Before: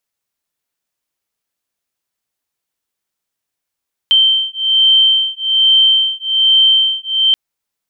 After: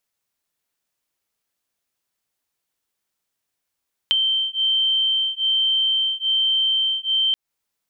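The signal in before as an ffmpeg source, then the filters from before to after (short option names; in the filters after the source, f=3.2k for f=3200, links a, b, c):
-f lavfi -i "aevalsrc='0.251*(sin(2*PI*3120*t)+sin(2*PI*3121.2*t))':d=3.23:s=44100"
-af "acompressor=threshold=-18dB:ratio=12"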